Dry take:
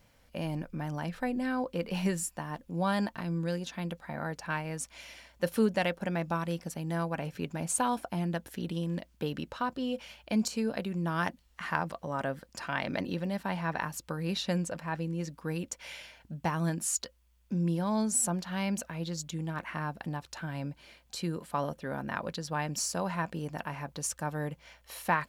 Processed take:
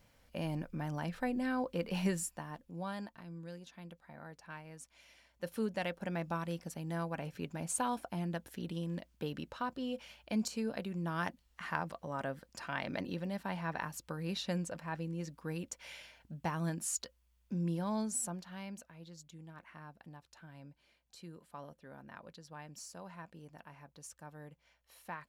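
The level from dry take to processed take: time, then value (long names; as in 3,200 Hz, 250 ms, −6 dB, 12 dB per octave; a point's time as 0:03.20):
0:02.13 −3 dB
0:03.13 −14.5 dB
0:04.96 −14.5 dB
0:06.13 −5.5 dB
0:17.91 −5.5 dB
0:18.92 −16.5 dB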